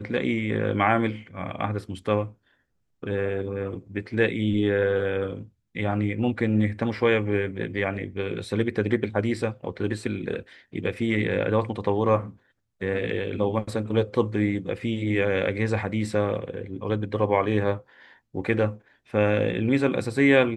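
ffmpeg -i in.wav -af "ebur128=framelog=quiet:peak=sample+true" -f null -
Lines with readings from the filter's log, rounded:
Integrated loudness:
  I:         -25.8 LUFS
  Threshold: -36.1 LUFS
Loudness range:
  LRA:         2.6 LU
  Threshold: -46.5 LUFS
  LRA low:   -28.0 LUFS
  LRA high:  -25.3 LUFS
Sample peak:
  Peak:       -5.6 dBFS
True peak:
  Peak:       -5.6 dBFS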